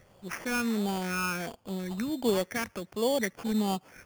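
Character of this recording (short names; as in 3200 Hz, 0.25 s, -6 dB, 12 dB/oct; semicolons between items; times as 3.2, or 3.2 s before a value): phasing stages 8, 1.4 Hz, lowest notch 690–1700 Hz; aliases and images of a low sample rate 3900 Hz, jitter 0%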